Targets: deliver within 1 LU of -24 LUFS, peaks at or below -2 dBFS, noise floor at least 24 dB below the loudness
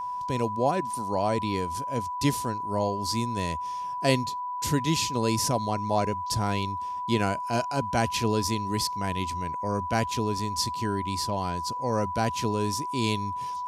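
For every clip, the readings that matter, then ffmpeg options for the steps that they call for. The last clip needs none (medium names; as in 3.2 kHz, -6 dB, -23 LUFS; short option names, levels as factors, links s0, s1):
steady tone 990 Hz; tone level -30 dBFS; loudness -28.0 LUFS; peak level -9.5 dBFS; loudness target -24.0 LUFS
-> -af "bandreject=f=990:w=30"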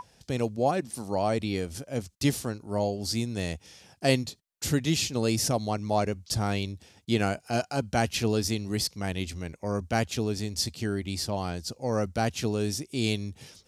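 steady tone not found; loudness -29.5 LUFS; peak level -10.0 dBFS; loudness target -24.0 LUFS
-> -af "volume=1.88"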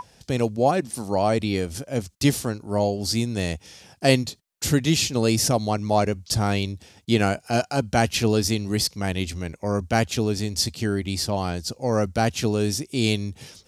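loudness -24.0 LUFS; peak level -4.5 dBFS; noise floor -59 dBFS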